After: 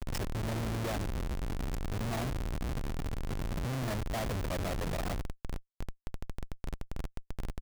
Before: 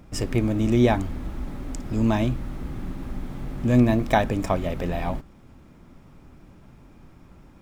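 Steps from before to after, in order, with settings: comb 1.7 ms, depth 56%; reverse; compression 20:1, threshold -29 dBFS, peak gain reduction 18 dB; reverse; pre-echo 290 ms -17 dB; wow and flutter 130 cents; Schmitt trigger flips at -39.5 dBFS; trim +1.5 dB

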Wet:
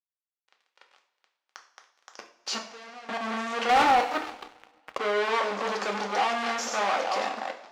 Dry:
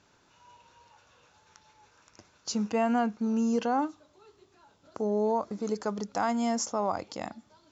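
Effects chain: chunks repeated in reverse 167 ms, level -10 dB; in parallel at -5 dB: bit crusher 7-bit; on the sum: level rider gain up to 8.5 dB; fuzz box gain 34 dB, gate -42 dBFS; peak limiter -16.5 dBFS, peak gain reduction 6 dB; 2.58–3.09 s: expander -9 dBFS; band-pass 610–3800 Hz; on a send at -3 dB: reverberation, pre-delay 3 ms; 3.69–4.98 s: on the sum: waveshaping leveller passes 2; trim -4.5 dB

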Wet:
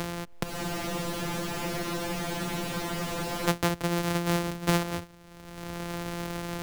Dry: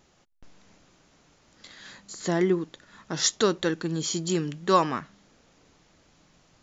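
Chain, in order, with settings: sorted samples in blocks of 256 samples; spectral freeze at 0.46 s, 3.03 s; three bands compressed up and down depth 100%; trim +2.5 dB

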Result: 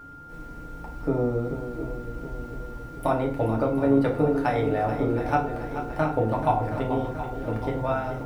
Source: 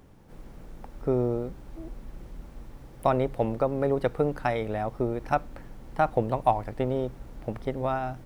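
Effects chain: compression 1.5:1, threshold -29 dBFS, peak gain reduction 5 dB; shuffle delay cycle 722 ms, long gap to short 1.5:1, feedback 51%, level -10 dB; FDN reverb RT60 0.45 s, low-frequency decay 1.55×, high-frequency decay 0.8×, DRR -1.5 dB; whistle 1.4 kHz -43 dBFS

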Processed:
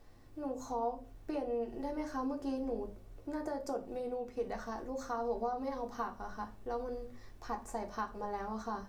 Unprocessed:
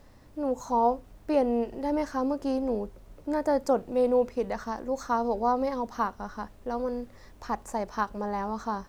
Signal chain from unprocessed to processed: compression, threshold -27 dBFS, peak gain reduction 8.5 dB; on a send: reverberation RT60 0.40 s, pre-delay 3 ms, DRR 1.5 dB; on the sum: trim -8 dB

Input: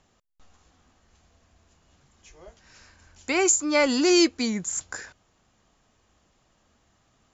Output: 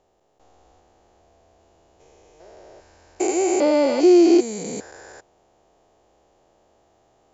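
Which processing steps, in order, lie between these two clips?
spectrogram pixelated in time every 400 ms; high-order bell 540 Hz +13 dB

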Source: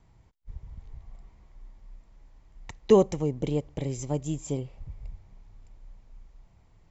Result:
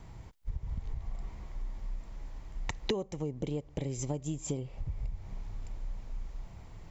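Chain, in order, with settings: compression 12:1, threshold -42 dBFS, peak gain reduction 28.5 dB; trim +11 dB

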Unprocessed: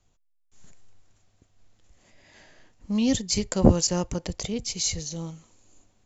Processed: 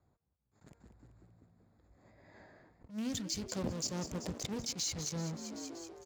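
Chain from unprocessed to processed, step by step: local Wiener filter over 15 samples; in parallel at -10.5 dB: fuzz box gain 42 dB, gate -43 dBFS; 2.91–3.42 s: on the sum: peaking EQ 890 Hz -6 dB 1.6 oct; de-hum 232.2 Hz, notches 11; dynamic bell 4.5 kHz, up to +6 dB, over -34 dBFS, Q 0.8; on a send: frequency-shifting echo 191 ms, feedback 53%, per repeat +57 Hz, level -15 dB; on the sum: compression 4:1, threshold -39 dBFS, peak gain reduction 24 dB; high-pass 69 Hz 12 dB/octave; attacks held to a fixed rise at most 210 dB/s

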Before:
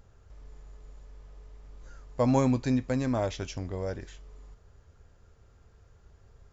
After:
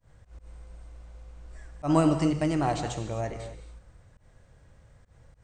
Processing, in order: gated-style reverb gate 350 ms flat, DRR 7 dB; slow attack 118 ms; tape speed +20%; trim +1.5 dB

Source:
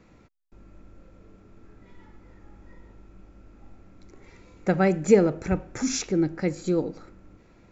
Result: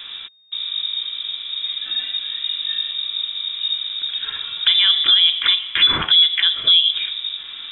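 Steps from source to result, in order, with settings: 4.85–6.94 s: high-pass 200 Hz 12 dB/octave; compression 5:1, threshold -29 dBFS, peak gain reduction 16 dB; frequency inversion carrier 3.7 kHz; loudness maximiser +25.5 dB; trim -4.5 dB

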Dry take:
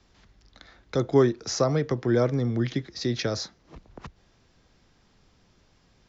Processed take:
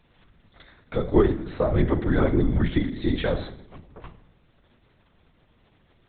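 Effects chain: 1.77–3.85 s: comb 7.4 ms, depth 82%; FDN reverb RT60 0.73 s, low-frequency decay 1.3×, high-frequency decay 0.95×, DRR 6.5 dB; LPC vocoder at 8 kHz whisper

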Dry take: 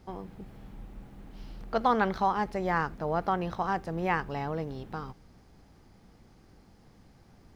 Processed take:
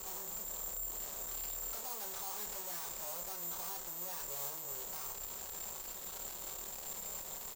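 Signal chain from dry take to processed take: comb 5.3 ms, depth 78%; compression 4:1, threshold -42 dBFS, peak gain reduction 20.5 dB; bit crusher 10-bit; 0.91–3.09 s: bass shelf 130 Hz -4.5 dB; careless resampling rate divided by 6×, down none, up zero stuff; valve stage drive 52 dB, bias 0.35; graphic EQ 125/250/500/1000/4000 Hz -7/-7/+7/+7/+6 dB; flutter echo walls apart 4.9 m, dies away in 0.24 s; trim +12.5 dB

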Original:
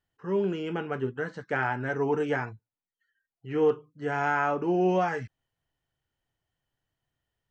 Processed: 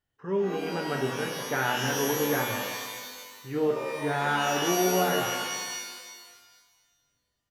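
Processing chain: tremolo triangle 1.3 Hz, depth 35%; frequency-shifting echo 199 ms, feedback 31%, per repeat +79 Hz, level -10 dB; pitch-shifted reverb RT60 1.5 s, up +12 st, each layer -2 dB, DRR 4.5 dB

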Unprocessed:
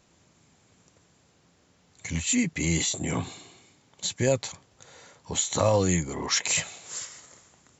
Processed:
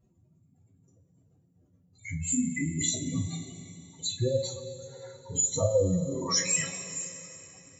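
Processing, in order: spectral contrast enhancement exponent 3.2; two-slope reverb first 0.22 s, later 3.5 s, from -21 dB, DRR -7 dB; trim -7.5 dB

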